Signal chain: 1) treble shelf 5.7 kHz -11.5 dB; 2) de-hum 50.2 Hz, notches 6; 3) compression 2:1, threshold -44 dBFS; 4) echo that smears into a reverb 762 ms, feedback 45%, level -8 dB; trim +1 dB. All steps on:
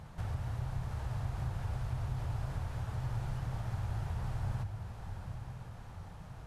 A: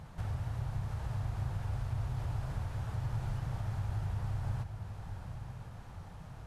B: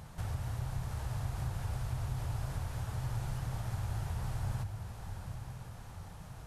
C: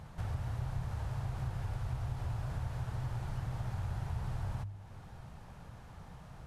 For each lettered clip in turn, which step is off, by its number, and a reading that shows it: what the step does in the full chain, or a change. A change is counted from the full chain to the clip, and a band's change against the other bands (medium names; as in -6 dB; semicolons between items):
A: 2, 125 Hz band +1.5 dB; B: 1, 8 kHz band +7.5 dB; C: 4, echo-to-direct -7.0 dB to none